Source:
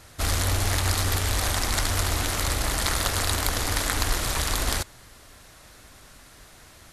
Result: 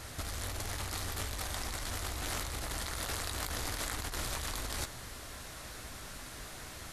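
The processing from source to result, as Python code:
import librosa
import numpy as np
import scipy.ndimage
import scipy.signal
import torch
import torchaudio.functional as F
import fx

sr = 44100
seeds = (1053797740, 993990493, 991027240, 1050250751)

y = fx.room_early_taps(x, sr, ms=(16, 28), db=(-11.5, -16.0))
y = fx.over_compress(y, sr, threshold_db=-33.0, ratio=-1.0)
y = y * 10.0 ** (-4.5 / 20.0)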